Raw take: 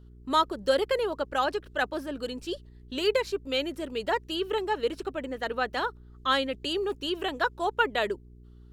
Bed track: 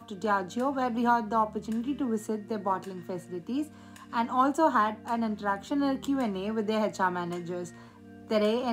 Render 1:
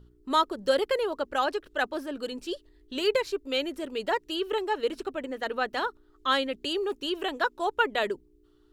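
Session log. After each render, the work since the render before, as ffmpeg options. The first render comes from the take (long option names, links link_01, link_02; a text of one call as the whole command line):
ffmpeg -i in.wav -af "bandreject=frequency=60:width_type=h:width=4,bandreject=frequency=120:width_type=h:width=4,bandreject=frequency=180:width_type=h:width=4,bandreject=frequency=240:width_type=h:width=4" out.wav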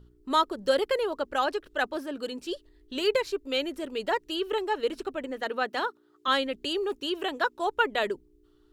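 ffmpeg -i in.wav -filter_complex "[0:a]asettb=1/sr,asplit=3[link_01][link_02][link_03];[link_01]atrim=end=1.964[link_04];[link_02]atrim=start=1.96:end=2.46,asetpts=PTS-STARTPTS,afade=type=in:duration=0.004:curve=qsin,afade=type=out:start_time=0.496:duration=0.004:curve=qsin,highpass=64[link_05];[link_03]atrim=start=2.456[link_06];[link_04][link_05]acrossfade=duration=0.004:curve1=hsin:curve2=qsin[link_07];[link_07][link_06]acrossfade=duration=0.004:curve1=qsin:curve2=hsin,asettb=1/sr,asplit=3[link_08][link_09][link_10];[link_08]atrim=end=5.414[link_11];[link_09]atrim=start=5.41:end=6.28,asetpts=PTS-STARTPTS,afade=type=in:duration=0.004:curve=qsin,afade=type=out:start_time=0.866:duration=0.004:curve=qsin,highpass=frequency=140:width=0.5412,highpass=frequency=140:width=1.3066[link_12];[link_10]atrim=start=6.276[link_13];[link_11][link_12]acrossfade=duration=0.004:curve1=hsin:curve2=qsin[link_14];[link_14][link_13]acrossfade=duration=0.004:curve1=qsin:curve2=hsin,asettb=1/sr,asplit=3[link_15][link_16][link_17];[link_15]atrim=end=6.994[link_18];[link_16]atrim=start=6.99:end=7.64,asetpts=PTS-STARTPTS,afade=type=in:duration=0.004:curve=qsin,afade=type=out:start_time=0.646:duration=0.004:curve=qsin,highpass=52[link_19];[link_17]atrim=start=7.636[link_20];[link_18][link_19]acrossfade=duration=0.004:curve1=hsin:curve2=qsin[link_21];[link_21][link_20]acrossfade=duration=0.004:curve1=qsin:curve2=hsin" out.wav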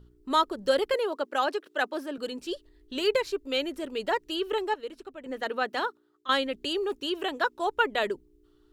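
ffmpeg -i in.wav -filter_complex "[0:a]asettb=1/sr,asplit=3[link_01][link_02][link_03];[link_01]atrim=end=0.944[link_04];[link_02]atrim=start=0.94:end=2.18,asetpts=PTS-STARTPTS,afade=type=in:duration=0.004:curve=qsin,afade=type=out:start_time=1.236:duration=0.004:curve=qsin,highpass=frequency=220:width=0.5412,highpass=frequency=220:width=1.3066[link_05];[link_03]atrim=start=2.176[link_06];[link_04][link_05]acrossfade=duration=0.004:curve1=hsin:curve2=qsin[link_07];[link_07][link_06]acrossfade=duration=0.004:curve1=qsin:curve2=hsin,asplit=4[link_08][link_09][link_10][link_11];[link_08]atrim=end=4.742[link_12];[link_09]atrim=start=4.738:end=5.262,asetpts=PTS-STARTPTS,volume=-9.5dB[link_13];[link_10]atrim=start=5.258:end=6.29,asetpts=PTS-STARTPTS,afade=type=out:start_time=0.592:duration=0.44:silence=0.188365[link_14];[link_11]atrim=start=6.29,asetpts=PTS-STARTPTS,afade=type=in:duration=0.004:curve=hsin:silence=0.188365[link_15];[link_12][link_13]acrossfade=duration=0.004:curve1=hsin:curve2=hsin[link_16];[link_14][link_15]concat=n=2:v=0:a=1[link_17];[link_16][link_17]acrossfade=duration=0.004:curve1=hsin:curve2=hsin" out.wav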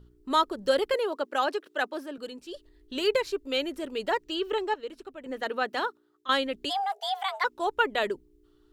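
ffmpeg -i in.wav -filter_complex "[0:a]asettb=1/sr,asplit=3[link_01][link_02][link_03];[link_01]atrim=end=4.234[link_04];[link_02]atrim=start=4.23:end=4.89,asetpts=PTS-STARTPTS,afade=type=in:duration=0.004:curve=qsin,afade=type=out:start_time=0.656:duration=0.004:curve=qsin,equalizer=frequency=11000:width=2.8:gain=-14.5[link_05];[link_03]atrim=start=4.886[link_06];[link_04][link_05]acrossfade=duration=0.004:curve1=hsin:curve2=qsin[link_07];[link_07][link_06]acrossfade=duration=0.004:curve1=qsin:curve2=hsin,asplit=3[link_08][link_09][link_10];[link_08]afade=type=out:start_time=6.69:duration=0.02[link_11];[link_09]afreqshift=390,afade=type=in:start_time=6.69:duration=0.02,afade=type=out:start_time=7.43:duration=0.02[link_12];[link_10]afade=type=in:start_time=7.43:duration=0.02[link_13];[link_11][link_12][link_13]amix=inputs=3:normalize=0,asplit=2[link_14][link_15];[link_14]atrim=end=2.54,asetpts=PTS-STARTPTS,afade=type=out:start_time=1.66:duration=0.88:silence=0.398107[link_16];[link_15]atrim=start=2.54,asetpts=PTS-STARTPTS,afade=type=in:duration=0.004:curve=hsin:silence=0.398107[link_17];[link_16][link_17]concat=n=2:v=0:a=1" out.wav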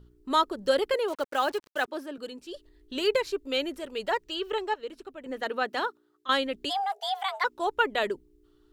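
ffmpeg -i in.wav -filter_complex "[0:a]asettb=1/sr,asplit=3[link_01][link_02][link_03];[link_01]atrim=end=1.084[link_04];[link_02]atrim=start=1.08:end=1.88,asetpts=PTS-STARTPTS,afade=type=in:duration=0.004:curve=qsin,afade=type=out:start_time=0.796:duration=0.004:curve=qsin,acrusher=bits=6:mix=0:aa=0.5[link_05];[link_03]atrim=start=1.876[link_06];[link_04][link_05]acrossfade=duration=0.004:curve1=hsin:curve2=qsin[link_07];[link_07][link_06]acrossfade=duration=0.004:curve1=qsin:curve2=hsin,asettb=1/sr,asplit=3[link_08][link_09][link_10];[link_08]atrim=end=3.764[link_11];[link_09]atrim=start=3.76:end=4.81,asetpts=PTS-STARTPTS,afade=type=in:duration=0.004:curve=qsin,afade=type=out:start_time=1.046:duration=0.004:curve=qsin,equalizer=frequency=290:width_type=o:width=0.58:gain=-8[link_12];[link_10]atrim=start=4.806[link_13];[link_11][link_12]acrossfade=duration=0.004:curve1=hsin:curve2=qsin[link_14];[link_14][link_13]acrossfade=duration=0.004:curve1=qsin:curve2=hsin" out.wav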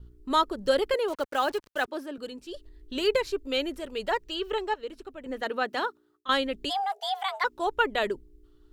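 ffmpeg -i in.wav -af "agate=range=-33dB:threshold=-60dB:ratio=3:detection=peak,lowshelf=frequency=97:gain=11.5" out.wav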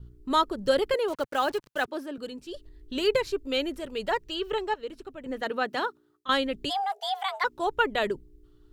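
ffmpeg -i in.wav -af "equalizer=frequency=130:width_type=o:width=1.1:gain=7.5" out.wav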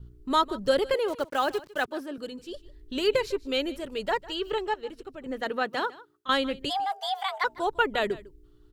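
ffmpeg -i in.wav -af "aecho=1:1:152:0.106" out.wav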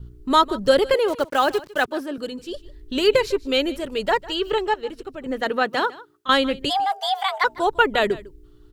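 ffmpeg -i in.wav -af "volume=7dB" out.wav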